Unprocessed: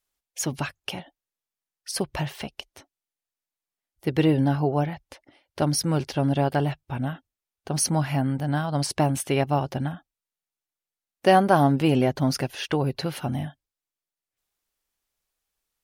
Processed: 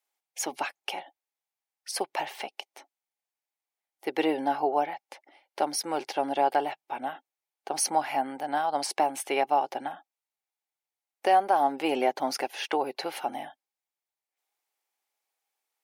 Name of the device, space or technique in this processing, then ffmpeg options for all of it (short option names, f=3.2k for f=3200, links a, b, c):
laptop speaker: -af "highpass=f=330:w=0.5412,highpass=f=330:w=1.3066,equalizer=f=810:t=o:w=0.38:g=11,equalizer=f=2.2k:t=o:w=0.37:g=5.5,alimiter=limit=-9.5dB:level=0:latency=1:release=427,volume=-3dB"